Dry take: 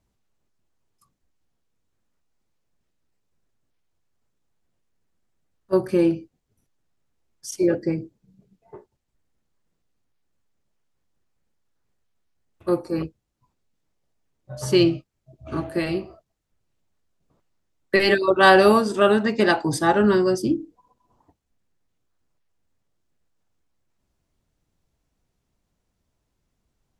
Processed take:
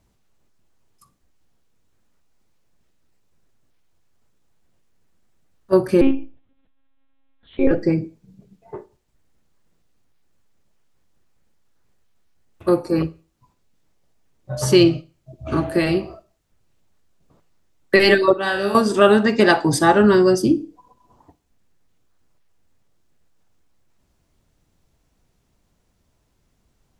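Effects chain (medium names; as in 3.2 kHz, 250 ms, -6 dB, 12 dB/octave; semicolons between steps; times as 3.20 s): 6.01–7.71 s: monotone LPC vocoder at 8 kHz 270 Hz; in parallel at 0 dB: compression, threshold -28 dBFS, peak gain reduction 17.5 dB; 18.33–18.75 s: on the sum: feedback comb 66 Hz, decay 0.8 s, harmonics all, mix 90%; Schroeder reverb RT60 0.36 s, DRR 18 dB; trim +2.5 dB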